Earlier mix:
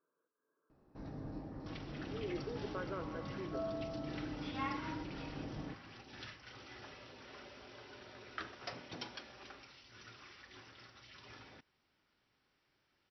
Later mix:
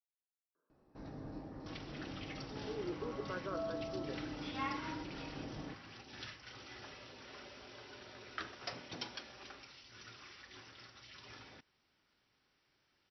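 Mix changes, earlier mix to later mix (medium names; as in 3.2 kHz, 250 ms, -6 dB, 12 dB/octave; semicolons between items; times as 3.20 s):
speech: entry +0.55 s; first sound: add tone controls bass -3 dB, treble -2 dB; master: add treble shelf 4.2 kHz +6 dB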